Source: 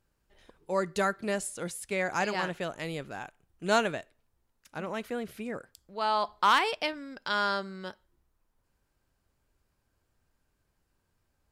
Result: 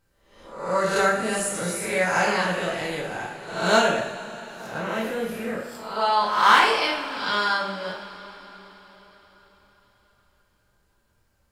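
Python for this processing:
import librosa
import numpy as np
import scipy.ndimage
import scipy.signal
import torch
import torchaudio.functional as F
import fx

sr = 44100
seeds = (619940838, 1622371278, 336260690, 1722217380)

y = fx.spec_swells(x, sr, rise_s=0.65)
y = fx.rev_double_slope(y, sr, seeds[0], early_s=0.57, late_s=4.7, knee_db=-18, drr_db=-4.5)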